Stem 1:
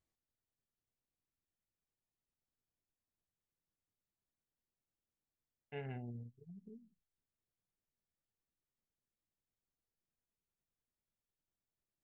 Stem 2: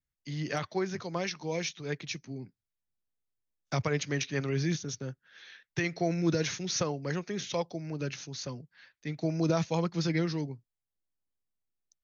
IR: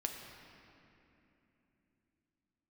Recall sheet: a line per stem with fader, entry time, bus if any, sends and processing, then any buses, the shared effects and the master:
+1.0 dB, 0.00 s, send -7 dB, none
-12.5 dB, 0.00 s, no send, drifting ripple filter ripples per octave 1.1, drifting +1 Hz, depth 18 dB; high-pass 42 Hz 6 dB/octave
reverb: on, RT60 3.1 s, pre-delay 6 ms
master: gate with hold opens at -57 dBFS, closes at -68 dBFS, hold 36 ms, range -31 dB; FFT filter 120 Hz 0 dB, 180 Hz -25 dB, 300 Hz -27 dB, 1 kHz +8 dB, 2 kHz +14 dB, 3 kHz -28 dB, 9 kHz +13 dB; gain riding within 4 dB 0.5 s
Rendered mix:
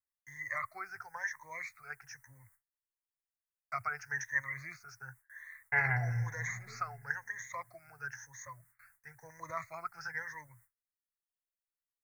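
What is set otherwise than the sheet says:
stem 1 +1.0 dB -> +12.0 dB; master: missing gain riding within 4 dB 0.5 s

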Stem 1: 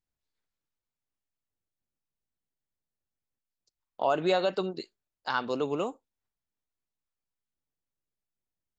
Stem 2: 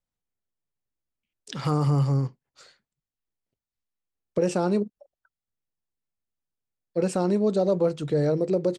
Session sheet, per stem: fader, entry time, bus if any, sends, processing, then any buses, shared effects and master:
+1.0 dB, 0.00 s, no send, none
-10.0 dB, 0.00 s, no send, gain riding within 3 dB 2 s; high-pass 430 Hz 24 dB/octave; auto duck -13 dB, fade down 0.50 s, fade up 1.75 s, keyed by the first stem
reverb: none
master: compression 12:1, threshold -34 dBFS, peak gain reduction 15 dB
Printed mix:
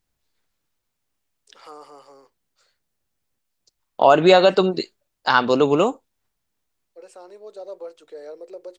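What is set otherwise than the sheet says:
stem 1 +1.0 dB -> +13.0 dB; master: missing compression 12:1, threshold -34 dBFS, peak gain reduction 15 dB

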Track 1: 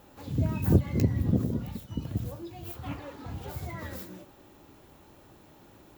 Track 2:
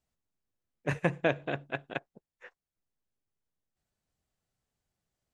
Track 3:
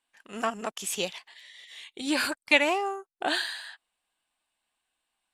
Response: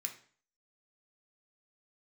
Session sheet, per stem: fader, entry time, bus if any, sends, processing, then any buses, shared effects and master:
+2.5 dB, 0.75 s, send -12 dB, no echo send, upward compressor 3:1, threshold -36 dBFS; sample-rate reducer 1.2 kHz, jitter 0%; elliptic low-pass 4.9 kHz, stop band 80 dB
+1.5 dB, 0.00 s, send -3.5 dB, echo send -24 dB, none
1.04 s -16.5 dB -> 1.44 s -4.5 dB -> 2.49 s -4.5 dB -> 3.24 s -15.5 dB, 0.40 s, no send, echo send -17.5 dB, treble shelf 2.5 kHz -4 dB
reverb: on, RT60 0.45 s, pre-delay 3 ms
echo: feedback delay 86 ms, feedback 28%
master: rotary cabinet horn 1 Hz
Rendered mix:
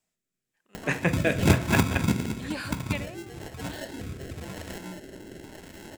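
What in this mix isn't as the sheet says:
stem 1: missing elliptic low-pass 4.9 kHz, stop band 80 dB; reverb return +9.5 dB

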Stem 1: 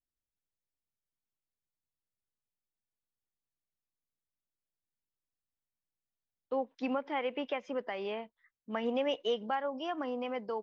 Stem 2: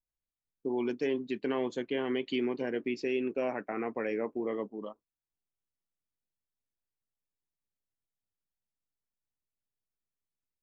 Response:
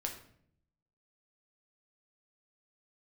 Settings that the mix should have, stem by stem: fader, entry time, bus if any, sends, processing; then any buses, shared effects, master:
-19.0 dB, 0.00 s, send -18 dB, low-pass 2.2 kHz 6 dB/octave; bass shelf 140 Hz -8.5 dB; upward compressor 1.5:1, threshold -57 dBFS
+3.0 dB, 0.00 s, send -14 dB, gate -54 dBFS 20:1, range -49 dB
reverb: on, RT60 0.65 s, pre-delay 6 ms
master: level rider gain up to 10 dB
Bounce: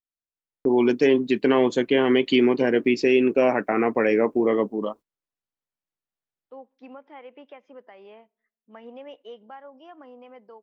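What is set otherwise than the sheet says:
stem 1: send -18 dB -> -24 dB; stem 2: send off

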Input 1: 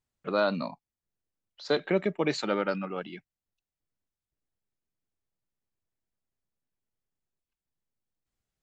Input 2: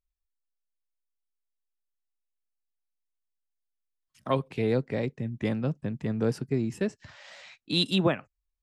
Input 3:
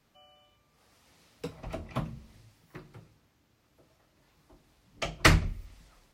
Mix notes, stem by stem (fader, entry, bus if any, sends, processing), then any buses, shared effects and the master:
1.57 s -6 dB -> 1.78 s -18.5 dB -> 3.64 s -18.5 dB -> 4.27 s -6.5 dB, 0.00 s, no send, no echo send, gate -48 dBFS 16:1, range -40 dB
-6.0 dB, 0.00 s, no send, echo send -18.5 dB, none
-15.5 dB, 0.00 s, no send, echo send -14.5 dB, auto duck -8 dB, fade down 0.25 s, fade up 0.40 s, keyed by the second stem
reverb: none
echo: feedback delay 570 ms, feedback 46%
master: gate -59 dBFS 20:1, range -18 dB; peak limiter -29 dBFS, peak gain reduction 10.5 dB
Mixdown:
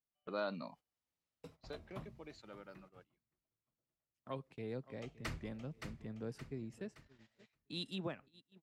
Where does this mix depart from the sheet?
stem 1 -6.0 dB -> -13.0 dB; stem 2 -6.0 dB -> -17.5 dB; master: missing peak limiter -29 dBFS, peak gain reduction 10.5 dB

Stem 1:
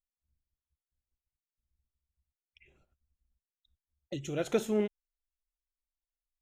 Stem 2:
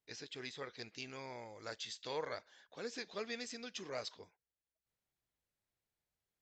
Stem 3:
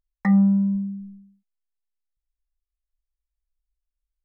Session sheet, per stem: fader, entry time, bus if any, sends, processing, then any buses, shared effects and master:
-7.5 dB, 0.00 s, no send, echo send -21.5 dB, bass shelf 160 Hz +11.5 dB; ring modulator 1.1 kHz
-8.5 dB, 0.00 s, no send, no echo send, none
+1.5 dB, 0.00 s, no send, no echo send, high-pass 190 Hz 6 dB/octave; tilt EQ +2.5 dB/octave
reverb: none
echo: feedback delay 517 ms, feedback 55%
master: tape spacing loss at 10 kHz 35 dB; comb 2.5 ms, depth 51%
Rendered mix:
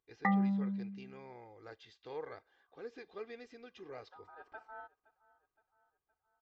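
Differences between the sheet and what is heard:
stem 1 -7.5 dB -> -18.0 dB; stem 2 -8.5 dB -> -2.0 dB

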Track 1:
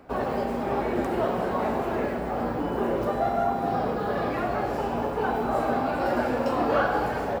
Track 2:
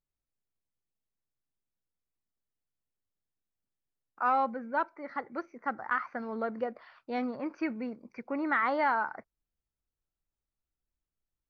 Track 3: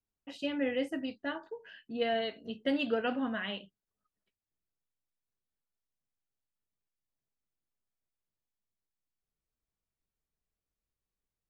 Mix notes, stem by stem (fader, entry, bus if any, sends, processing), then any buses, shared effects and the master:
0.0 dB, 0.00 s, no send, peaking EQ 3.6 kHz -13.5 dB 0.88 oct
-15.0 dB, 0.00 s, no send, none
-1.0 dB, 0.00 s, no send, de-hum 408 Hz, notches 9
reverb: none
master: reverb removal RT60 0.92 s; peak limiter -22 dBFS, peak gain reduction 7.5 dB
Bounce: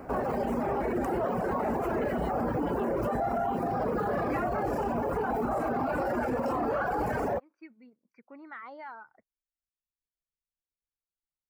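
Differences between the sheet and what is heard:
stem 1 0.0 dB -> +7.5 dB; stem 3 -1.0 dB -> -11.5 dB

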